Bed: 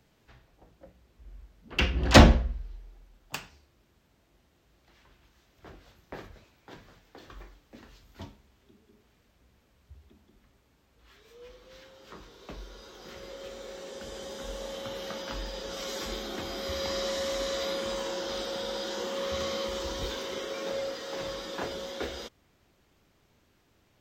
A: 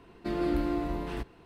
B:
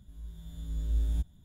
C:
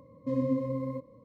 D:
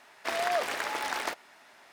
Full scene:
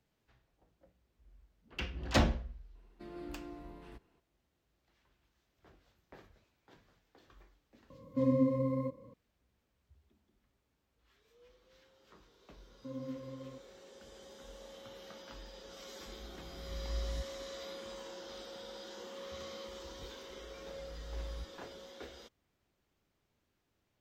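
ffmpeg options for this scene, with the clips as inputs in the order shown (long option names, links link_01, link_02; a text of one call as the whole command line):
ffmpeg -i bed.wav -i cue0.wav -i cue1.wav -i cue2.wav -filter_complex "[3:a]asplit=2[link_01][link_02];[2:a]asplit=2[link_03][link_04];[0:a]volume=-13.5dB[link_05];[1:a]atrim=end=1.45,asetpts=PTS-STARTPTS,volume=-17dB,afade=type=in:duration=0.004:curve=hsin,afade=type=out:start_time=1.446:duration=0.004:curve=hsin,adelay=2750[link_06];[link_01]atrim=end=1.24,asetpts=PTS-STARTPTS,afade=type=in:duration=0.004:curve=hsin,afade=type=out:start_time=1.236:duration=0.004:curve=hsin,adelay=7900[link_07];[link_02]atrim=end=1.24,asetpts=PTS-STARTPTS,volume=-14dB,afade=type=in:duration=0.004:curve=hsin,afade=type=out:start_time=1.236:duration=0.004:curve=hsin,adelay=12580[link_08];[link_03]atrim=end=1.44,asetpts=PTS-STARTPTS,volume=-9.5dB,afade=type=in:duration=0.004:curve=hsin,afade=type=out:start_time=1.436:duration=0.004:curve=hsin,adelay=16000[link_09];[link_04]atrim=end=1.44,asetpts=PTS-STARTPTS,volume=-14dB,afade=type=in:duration=0.004:curve=hsin,afade=type=out:start_time=1.436:duration=0.004:curve=hsin,adelay=20220[link_10];[link_05][link_06][link_07][link_08][link_09][link_10]amix=inputs=6:normalize=0" out.wav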